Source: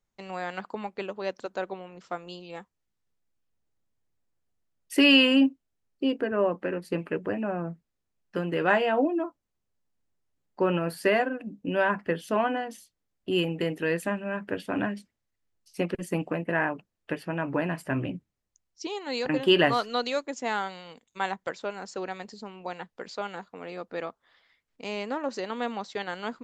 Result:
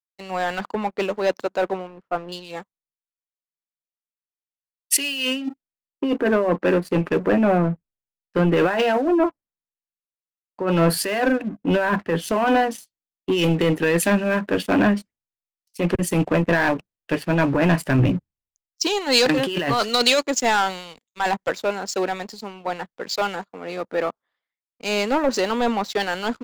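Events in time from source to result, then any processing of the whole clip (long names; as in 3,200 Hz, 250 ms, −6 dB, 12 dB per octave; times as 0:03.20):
0:01.87–0:02.32: low-pass filter 1,900 Hz
whole clip: compressor whose output falls as the input rises −28 dBFS, ratio −1; leveller curve on the samples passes 3; multiband upward and downward expander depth 100%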